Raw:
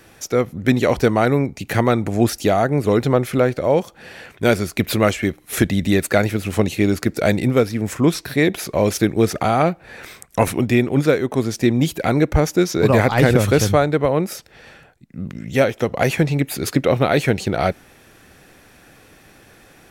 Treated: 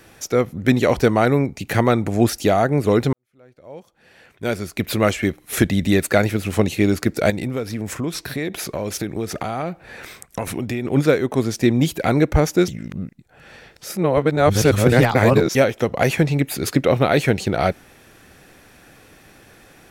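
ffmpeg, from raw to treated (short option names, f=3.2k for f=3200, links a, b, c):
-filter_complex "[0:a]asettb=1/sr,asplit=3[a][b][c];[a]atrim=end=7.304[d];[b]atrim=start=7.3:end=10.85,asetpts=PTS-STARTPTS,afade=t=in:d=0.004:c=qsin,afade=t=out:st=3.546:d=0.004:c=qsin,acompressor=threshold=-22dB:ratio=4:attack=3.2:release=140:knee=1:detection=peak[e];[c]atrim=start=10.846[f];[d][e]acrossfade=d=0.004:c1=hsin:c2=qsin[g];[g][f]acrossfade=d=0.004:c1=qsin:c2=hsin,asplit=4[h][i][j][k];[h]atrim=end=3.13,asetpts=PTS-STARTPTS,afade=t=out:st=3.126:d=0.004:c=hsin[l];[i]atrim=start=3.13:end=12.682,asetpts=PTS-STARTPTS,afade=t=in:d=2.06:c=qua[m];[j]atrim=start=12.678:end=15.552,asetpts=PTS-STARTPTS,areverse[n];[k]atrim=start=15.548[o];[l][m]concat=n=2:v=0:a=1[p];[p][n]acrossfade=d=0.004:c1=hsin:c2=hsin[q];[q][o]acrossfade=d=0.004:c1=hsin:c2=hsin"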